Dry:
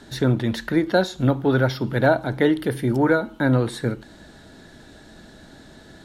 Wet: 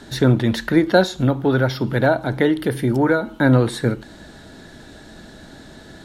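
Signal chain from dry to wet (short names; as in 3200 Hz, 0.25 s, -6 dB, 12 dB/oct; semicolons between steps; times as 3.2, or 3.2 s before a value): 1.06–3.27 compressor 1.5:1, threshold -23 dBFS, peak gain reduction 4 dB; gain +4.5 dB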